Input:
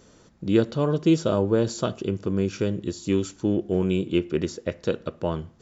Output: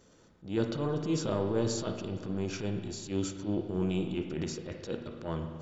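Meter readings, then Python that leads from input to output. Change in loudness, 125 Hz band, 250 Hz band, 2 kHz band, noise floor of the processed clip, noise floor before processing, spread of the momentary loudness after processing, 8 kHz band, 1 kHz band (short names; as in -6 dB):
-8.5 dB, -7.0 dB, -9.0 dB, -7.5 dB, -61 dBFS, -55 dBFS, 8 LU, n/a, -7.0 dB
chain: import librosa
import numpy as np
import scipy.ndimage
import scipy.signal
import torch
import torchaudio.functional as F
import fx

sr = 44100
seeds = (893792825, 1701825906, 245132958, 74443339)

y = fx.transient(x, sr, attack_db=-12, sustain_db=5)
y = fx.rev_spring(y, sr, rt60_s=1.8, pass_ms=(38, 42), chirp_ms=20, drr_db=5.5)
y = F.gain(torch.from_numpy(y), -7.0).numpy()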